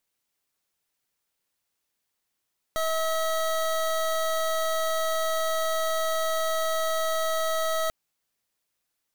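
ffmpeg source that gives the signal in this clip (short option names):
-f lavfi -i "aevalsrc='0.0501*(2*lt(mod(644*t,1),0.25)-1)':d=5.14:s=44100"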